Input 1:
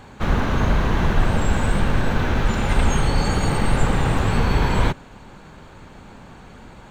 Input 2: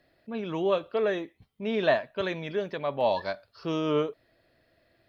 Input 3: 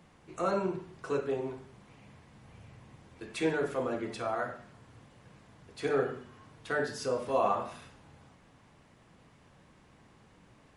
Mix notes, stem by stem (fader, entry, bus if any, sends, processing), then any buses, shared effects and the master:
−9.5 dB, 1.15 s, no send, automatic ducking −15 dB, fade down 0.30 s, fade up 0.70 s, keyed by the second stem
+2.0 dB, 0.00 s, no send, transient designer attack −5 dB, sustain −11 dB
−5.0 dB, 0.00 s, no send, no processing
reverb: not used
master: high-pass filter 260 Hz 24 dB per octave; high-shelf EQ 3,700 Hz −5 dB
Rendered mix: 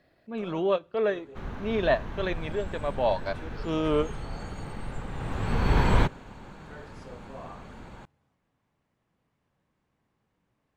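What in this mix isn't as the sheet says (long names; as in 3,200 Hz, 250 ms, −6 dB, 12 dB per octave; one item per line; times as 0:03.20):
stem 1 −9.5 dB → −2.5 dB
stem 3 −5.0 dB → −16.0 dB
master: missing high-pass filter 260 Hz 24 dB per octave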